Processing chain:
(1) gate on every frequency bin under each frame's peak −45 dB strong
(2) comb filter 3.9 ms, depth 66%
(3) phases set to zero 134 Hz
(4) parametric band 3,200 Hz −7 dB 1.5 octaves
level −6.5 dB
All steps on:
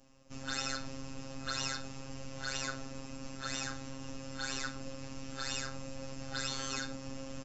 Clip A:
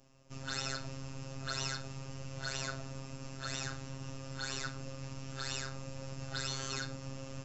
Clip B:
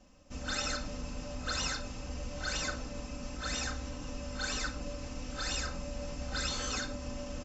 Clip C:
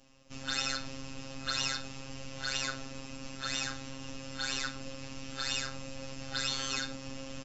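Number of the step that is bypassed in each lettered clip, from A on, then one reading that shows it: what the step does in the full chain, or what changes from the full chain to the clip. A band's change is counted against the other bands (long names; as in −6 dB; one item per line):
2, 125 Hz band +6.5 dB
3, 125 Hz band +1.5 dB
4, 4 kHz band +5.0 dB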